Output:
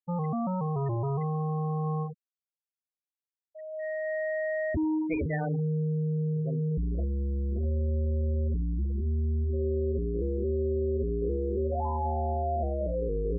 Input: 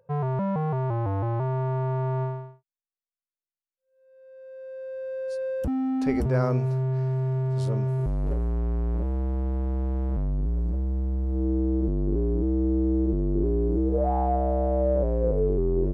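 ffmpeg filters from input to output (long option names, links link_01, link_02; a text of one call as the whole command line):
ffmpeg -i in.wav -filter_complex "[0:a]areverse,acompressor=threshold=-36dB:ratio=5,areverse,superequalizer=6b=1.41:11b=3.98:13b=0.447:15b=0.447:16b=0.447,asetrate=52479,aresample=44100,asplit=2[link_01][link_02];[link_02]aecho=0:1:79:0.133[link_03];[link_01][link_03]amix=inputs=2:normalize=0,acrusher=bits=7:mix=0:aa=0.000001,afftfilt=real='re*gte(hypot(re,im),0.0282)':imag='im*gte(hypot(re,im),0.0282)':win_size=1024:overlap=0.75,volume=7dB" out.wav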